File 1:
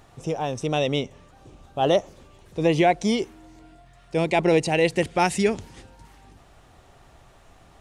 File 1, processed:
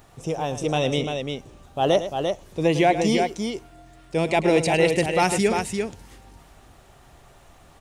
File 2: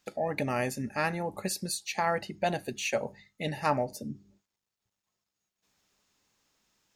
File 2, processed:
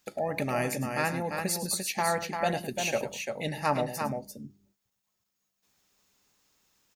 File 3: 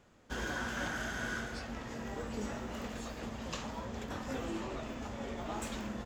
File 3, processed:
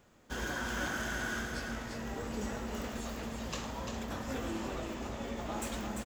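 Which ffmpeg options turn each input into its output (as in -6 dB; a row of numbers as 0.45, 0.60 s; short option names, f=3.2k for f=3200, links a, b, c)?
-filter_complex "[0:a]highshelf=f=11k:g=10.5,asplit=2[a][b];[b]aecho=0:1:106|345:0.251|0.531[c];[a][c]amix=inputs=2:normalize=0"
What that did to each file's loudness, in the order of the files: +0.5, +1.5, +1.5 LU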